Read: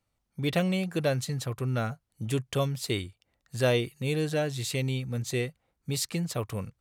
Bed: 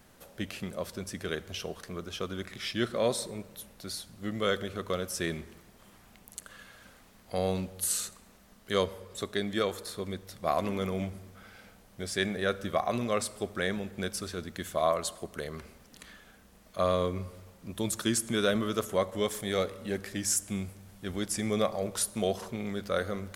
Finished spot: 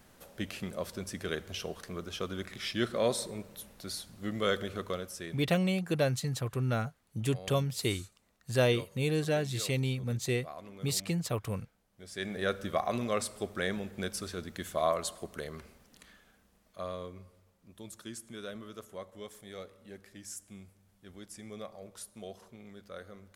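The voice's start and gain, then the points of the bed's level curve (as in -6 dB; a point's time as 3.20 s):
4.95 s, -1.5 dB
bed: 4.79 s -1 dB
5.60 s -17 dB
11.91 s -17 dB
12.41 s -2 dB
15.32 s -2 dB
17.43 s -15.5 dB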